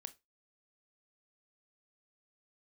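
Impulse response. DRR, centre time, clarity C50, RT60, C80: 11.5 dB, 3 ms, 20.0 dB, 0.20 s, 28.5 dB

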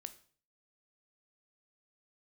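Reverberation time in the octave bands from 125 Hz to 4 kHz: 0.60 s, 0.50 s, 0.50 s, 0.45 s, 0.40 s, 0.45 s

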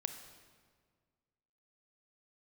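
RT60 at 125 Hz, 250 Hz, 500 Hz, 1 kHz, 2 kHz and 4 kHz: 2.1 s, 2.0 s, 1.9 s, 1.7 s, 1.4 s, 1.2 s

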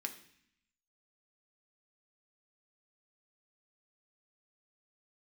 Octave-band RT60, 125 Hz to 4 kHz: 0.95 s, 0.95 s, 0.60 s, 0.65 s, 0.90 s, 0.80 s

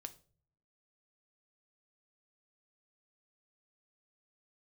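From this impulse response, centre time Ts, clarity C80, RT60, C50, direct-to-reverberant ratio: 4 ms, 21.5 dB, 0.45 s, 17.5 dB, 8.0 dB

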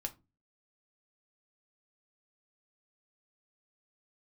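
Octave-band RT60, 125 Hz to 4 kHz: 0.50 s, 0.40 s, 0.30 s, 0.25 s, 0.20 s, 0.15 s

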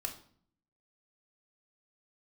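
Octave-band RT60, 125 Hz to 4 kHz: 0.85 s, 0.85 s, 0.55 s, 0.50 s, 0.45 s, 0.45 s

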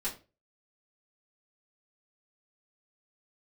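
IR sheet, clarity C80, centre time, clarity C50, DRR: 17.0 dB, 19 ms, 11.5 dB, -9.0 dB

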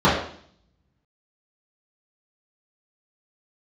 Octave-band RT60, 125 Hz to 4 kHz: 0.85 s, 0.75 s, 0.55 s, 0.55 s, 0.55 s, 0.65 s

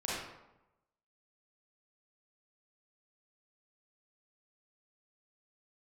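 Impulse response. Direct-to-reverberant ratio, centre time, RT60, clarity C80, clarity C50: -8.0 dB, 82 ms, 0.95 s, 2.0 dB, -3.0 dB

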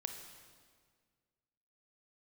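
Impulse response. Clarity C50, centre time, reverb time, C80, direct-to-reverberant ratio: 6.0 dB, 35 ms, 1.8 s, 7.5 dB, 5.0 dB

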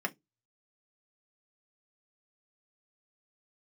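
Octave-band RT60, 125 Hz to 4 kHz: 0.25 s, 0.20 s, 0.20 s, 0.15 s, 0.15 s, 0.15 s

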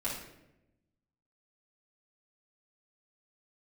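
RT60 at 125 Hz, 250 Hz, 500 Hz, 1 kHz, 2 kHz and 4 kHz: 1.4 s, 1.3 s, 1.0 s, 0.75 s, 0.80 s, 0.60 s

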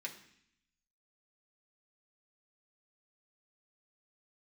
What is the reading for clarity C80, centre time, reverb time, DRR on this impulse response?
13.5 dB, 15 ms, 0.65 s, -1.0 dB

